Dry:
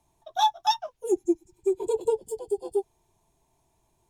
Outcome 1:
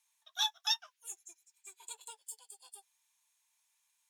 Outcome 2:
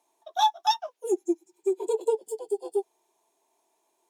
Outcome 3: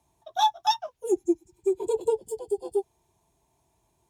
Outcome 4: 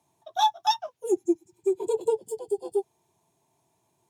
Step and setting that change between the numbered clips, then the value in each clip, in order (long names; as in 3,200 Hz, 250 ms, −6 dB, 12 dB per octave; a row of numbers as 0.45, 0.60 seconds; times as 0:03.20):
high-pass filter, corner frequency: 1,500, 330, 40, 110 Hertz